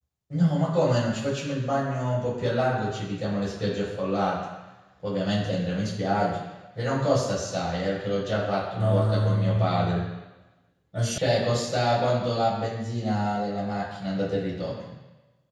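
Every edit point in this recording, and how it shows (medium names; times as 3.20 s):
11.18 s: sound stops dead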